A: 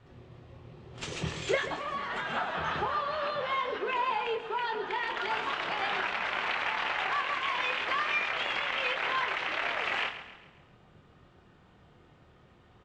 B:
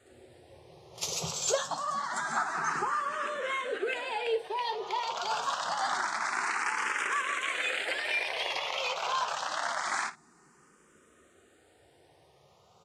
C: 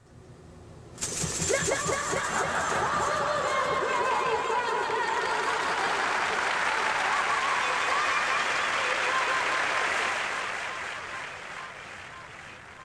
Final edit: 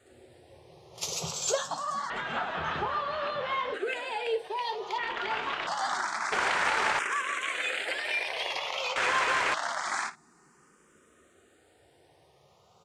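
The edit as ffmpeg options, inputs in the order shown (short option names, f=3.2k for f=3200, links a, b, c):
-filter_complex "[0:a]asplit=2[a][b];[2:a]asplit=2[c][d];[1:a]asplit=5[e][f][g][h][i];[e]atrim=end=2.102[j];[a]atrim=start=2.098:end=3.742[k];[f]atrim=start=3.738:end=4.982[l];[b]atrim=start=4.978:end=5.672[m];[g]atrim=start=5.668:end=6.322[n];[c]atrim=start=6.318:end=6.992[o];[h]atrim=start=6.988:end=8.962[p];[d]atrim=start=8.958:end=9.542[q];[i]atrim=start=9.538[r];[j][k]acrossfade=d=0.004:c1=hsin:c2=hsin[s];[s][l]acrossfade=d=0.004:c1=hsin:c2=hsin[t];[t][m]acrossfade=d=0.004:c1=hsin:c2=hsin[u];[u][n]acrossfade=d=0.004:c1=hsin:c2=hsin[v];[v][o]acrossfade=d=0.004:c1=hsin:c2=hsin[w];[w][p]acrossfade=d=0.004:c1=hsin:c2=hsin[x];[x][q]acrossfade=d=0.004:c1=hsin:c2=hsin[y];[y][r]acrossfade=d=0.004:c1=hsin:c2=hsin"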